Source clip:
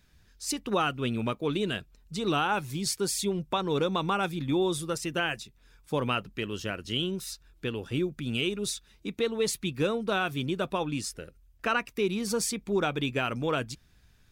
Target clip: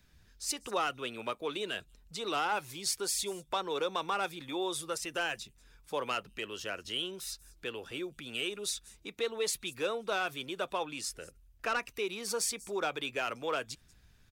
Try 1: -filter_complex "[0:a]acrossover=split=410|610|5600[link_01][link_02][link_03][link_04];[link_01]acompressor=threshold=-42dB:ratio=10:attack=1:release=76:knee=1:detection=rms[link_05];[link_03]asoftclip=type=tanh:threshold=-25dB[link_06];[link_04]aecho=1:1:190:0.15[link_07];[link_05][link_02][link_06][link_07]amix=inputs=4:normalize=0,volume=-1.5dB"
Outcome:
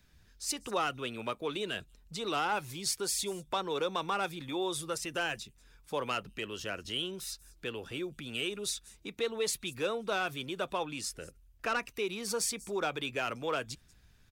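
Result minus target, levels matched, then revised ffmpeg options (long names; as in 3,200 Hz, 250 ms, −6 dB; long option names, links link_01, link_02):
downward compressor: peak gain reduction −6.5 dB
-filter_complex "[0:a]acrossover=split=410|610|5600[link_01][link_02][link_03][link_04];[link_01]acompressor=threshold=-49.5dB:ratio=10:attack=1:release=76:knee=1:detection=rms[link_05];[link_03]asoftclip=type=tanh:threshold=-25dB[link_06];[link_04]aecho=1:1:190:0.15[link_07];[link_05][link_02][link_06][link_07]amix=inputs=4:normalize=0,volume=-1.5dB"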